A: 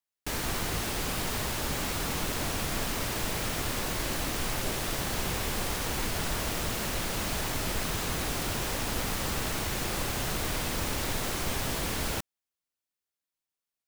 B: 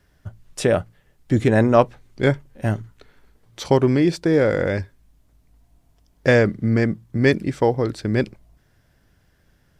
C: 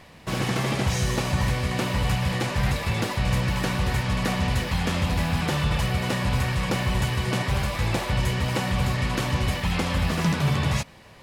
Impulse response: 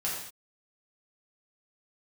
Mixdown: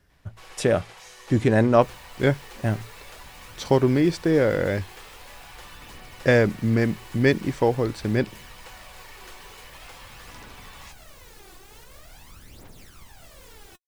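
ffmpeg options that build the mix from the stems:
-filter_complex "[0:a]aphaser=in_gain=1:out_gain=1:delay=2.8:decay=0.67:speed=0.45:type=triangular,alimiter=limit=0.133:level=0:latency=1:release=121,adelay=1550,volume=0.119[s0];[1:a]volume=0.75[s1];[2:a]highpass=f=480:w=0.5412,highpass=f=480:w=1.3066,equalizer=f=610:w=5.1:g=-8.5,adelay=100,volume=0.168[s2];[s0][s1][s2]amix=inputs=3:normalize=0"

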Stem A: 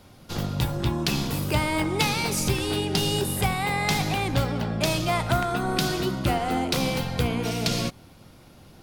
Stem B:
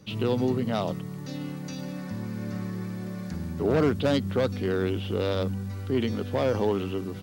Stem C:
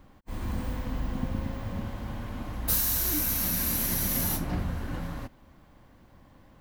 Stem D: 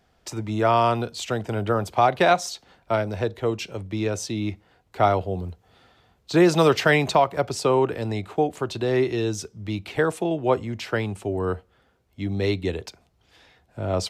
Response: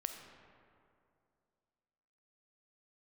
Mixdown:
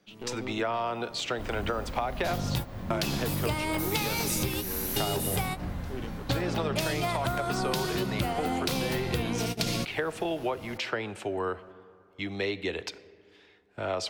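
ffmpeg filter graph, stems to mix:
-filter_complex "[0:a]highshelf=f=12000:g=5.5,adelay=1950,volume=1.33[s0];[1:a]highpass=240,aeval=exprs='(tanh(12.6*val(0)+0.75)-tanh(0.75))/12.6':c=same,volume=0.422[s1];[2:a]adelay=1100,volume=0.631[s2];[3:a]agate=range=0.316:threshold=0.00501:ratio=16:detection=peak,equalizer=f=2300:w=0.38:g=13,acrossover=split=240|780[s3][s4][s5];[s3]acompressor=threshold=0.0141:ratio=4[s6];[s4]acompressor=threshold=0.126:ratio=4[s7];[s5]acompressor=threshold=0.0562:ratio=4[s8];[s6][s7][s8]amix=inputs=3:normalize=0,volume=0.398,asplit=3[s9][s10][s11];[s10]volume=0.355[s12];[s11]apad=whole_len=475202[s13];[s0][s13]sidechaingate=range=0.0224:threshold=0.00501:ratio=16:detection=peak[s14];[4:a]atrim=start_sample=2205[s15];[s12][s15]afir=irnorm=-1:irlink=0[s16];[s14][s1][s2][s9][s16]amix=inputs=5:normalize=0,acompressor=threshold=0.0501:ratio=6"

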